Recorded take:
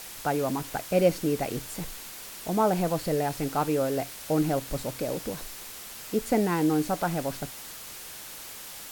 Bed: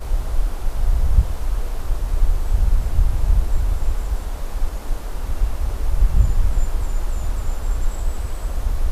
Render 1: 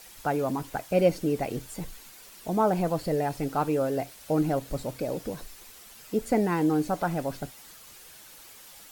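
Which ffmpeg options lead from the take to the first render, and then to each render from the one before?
-af "afftdn=nr=9:nf=-42"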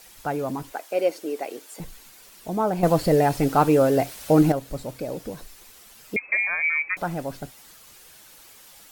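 -filter_complex "[0:a]asettb=1/sr,asplit=3[s0][s1][s2];[s0]atrim=end=0.724[s3];[s1]atrim=start=0.72:end=1.8,asetpts=PTS-STARTPTS,afade=t=in:d=0.004:c=qsin,afade=t=out:st=1.076:d=0.004:c=qsin,highpass=f=330:w=0.5412,highpass=f=330:w=1.3066[s4];[s2]atrim=start=1.796[s5];[s3][s4]acrossfade=d=0.004:c1=hsin:c2=qsin[s6];[s6][s5]acrossfade=d=0.004:c1=qsin:c2=hsin,asettb=1/sr,asplit=3[s7][s8][s9];[s7]atrim=end=6.164[s10];[s8]atrim=start=6.16:end=6.97,asetpts=PTS-STARTPTS,afade=t=in:d=0.004:c=qsin,afade=t=out:st=0.806:d=0.004:c=qsin,lowpass=f=2200:t=q:w=0.5098,lowpass=f=2200:t=q:w=0.6013,lowpass=f=2200:t=q:w=0.9,lowpass=f=2200:t=q:w=2.563,afreqshift=-2600[s11];[s9]atrim=start=6.966[s12];[s10][s11]acrossfade=d=0.004:c1=hsin:c2=qsin[s13];[s13][s12]acrossfade=d=0.004:c1=qsin:c2=hsin,asplit=3[s14][s15][s16];[s14]atrim=end=2.832[s17];[s15]atrim=start=2.828:end=4.522,asetpts=PTS-STARTPTS,volume=2.66[s18];[s16]atrim=start=4.518[s19];[s17][s18]acrossfade=d=0.004:c1=hsin:c2=hsin[s20];[s20][s19]acrossfade=d=0.004:c1=hsin:c2=hsin"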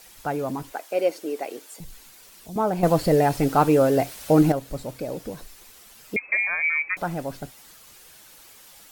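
-filter_complex "[0:a]asettb=1/sr,asplit=3[s0][s1][s2];[s0]atrim=end=1.694[s3];[s1]atrim=start=1.69:end=2.56,asetpts=PTS-STARTPTS,afade=t=in:d=0.004:c=qsin,afade=t=out:st=0.866:d=0.004:c=qsin,acrossover=split=160|3000[s4][s5][s6];[s5]acompressor=threshold=0.002:ratio=2:attack=3.2:release=140:knee=2.83:detection=peak[s7];[s4][s7][s6]amix=inputs=3:normalize=0[s8];[s2]atrim=start=2.556[s9];[s3][s8]acrossfade=d=0.004:c1=hsin:c2=qsin[s10];[s10][s9]acrossfade=d=0.004:c1=qsin:c2=hsin,asettb=1/sr,asplit=3[s11][s12][s13];[s11]atrim=end=3.314[s14];[s12]atrim=start=3.31:end=4.1,asetpts=PTS-STARTPTS,afade=t=in:d=0.004:c=qsin,afade=t=out:st=0.786:d=0.004:c=qsin,aeval=exprs='val(0)*gte(abs(val(0)),0.00668)':c=same[s15];[s13]atrim=start=4.096[s16];[s14][s15]acrossfade=d=0.004:c1=hsin:c2=qsin[s17];[s17][s16]acrossfade=d=0.004:c1=qsin:c2=hsin"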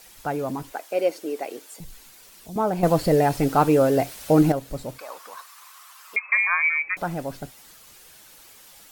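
-filter_complex "[0:a]asettb=1/sr,asplit=3[s0][s1][s2];[s0]atrim=end=4.984[s3];[s1]atrim=start=4.98:end=6.69,asetpts=PTS-STARTPTS,afade=t=in:d=0.004:c=qsin,afade=t=out:st=1.706:d=0.004:c=qsin,highpass=f=1100:t=q:w=5.8[s4];[s2]atrim=start=6.686[s5];[s3][s4]acrossfade=d=0.004:c1=hsin:c2=qsin[s6];[s6][s5]acrossfade=d=0.004:c1=qsin:c2=hsin"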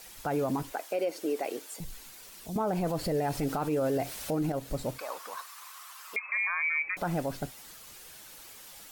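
-af "acompressor=threshold=0.0794:ratio=6,alimiter=limit=0.0794:level=0:latency=1:release=37"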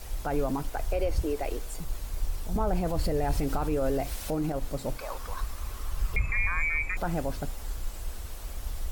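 -filter_complex "[1:a]volume=0.211[s0];[0:a][s0]amix=inputs=2:normalize=0"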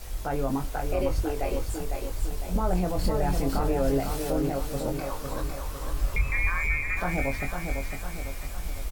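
-filter_complex "[0:a]asplit=2[s0][s1];[s1]adelay=22,volume=0.531[s2];[s0][s2]amix=inputs=2:normalize=0,aecho=1:1:504|1008|1512|2016|2520|3024:0.531|0.26|0.127|0.0625|0.0306|0.015"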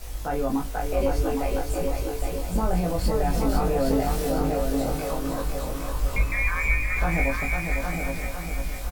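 -filter_complex "[0:a]asplit=2[s0][s1];[s1]adelay=18,volume=0.668[s2];[s0][s2]amix=inputs=2:normalize=0,aecho=1:1:813:0.562"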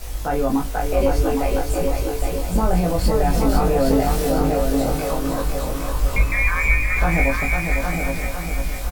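-af "volume=1.88"

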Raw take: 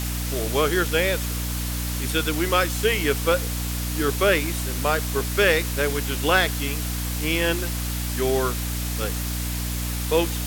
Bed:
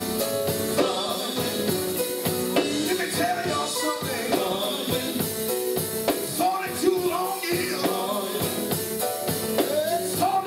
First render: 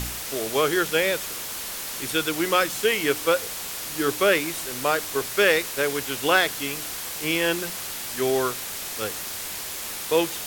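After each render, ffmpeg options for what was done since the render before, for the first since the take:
-af "bandreject=f=60:t=h:w=4,bandreject=f=120:t=h:w=4,bandreject=f=180:t=h:w=4,bandreject=f=240:t=h:w=4,bandreject=f=300:t=h:w=4"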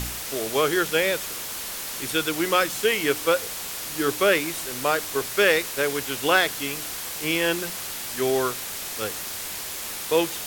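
-af anull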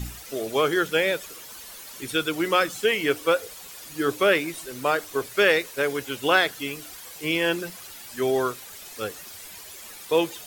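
-af "afftdn=nr=12:nf=-33"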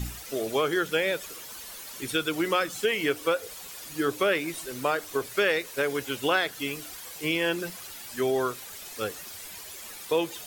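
-af "acompressor=threshold=0.0631:ratio=2"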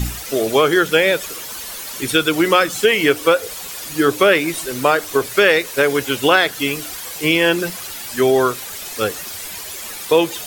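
-af "volume=3.76,alimiter=limit=0.891:level=0:latency=1"

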